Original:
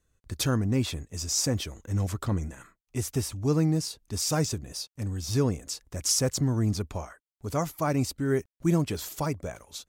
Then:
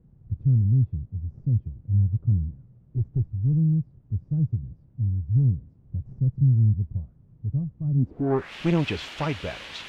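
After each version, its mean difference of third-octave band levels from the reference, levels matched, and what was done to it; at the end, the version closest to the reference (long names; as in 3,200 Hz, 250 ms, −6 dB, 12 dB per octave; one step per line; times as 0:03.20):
17.0 dB: gain on a spectral selection 0:02.75–0:03.26, 290–9,700 Hz +8 dB
background noise white −40 dBFS
asymmetric clip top −27 dBFS
low-pass filter sweep 130 Hz → 2,900 Hz, 0:07.94–0:08.54
level +2.5 dB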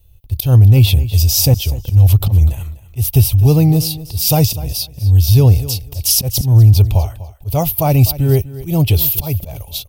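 8.5 dB: drawn EQ curve 110 Hz 0 dB, 220 Hz −21 dB, 810 Hz −11 dB, 1,100 Hz −23 dB, 1,700 Hz −29 dB, 2,800 Hz −6 dB, 5,000 Hz −12 dB, 7,200 Hz −21 dB, 14,000 Hz +5 dB
volume swells 162 ms
on a send: repeating echo 248 ms, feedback 16%, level −16.5 dB
on the sum: boost into a limiter +26.5 dB
level −1 dB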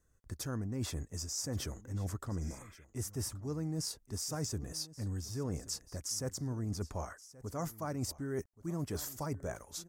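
5.0 dB: healed spectral selection 0:02.46–0:02.82, 1,300–3,700 Hz before
flat-topped bell 3,100 Hz −8.5 dB 1.1 octaves
reversed playback
downward compressor, threshold −34 dBFS, peak gain reduction 14.5 dB
reversed playback
single-tap delay 1,127 ms −18.5 dB
level −1 dB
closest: third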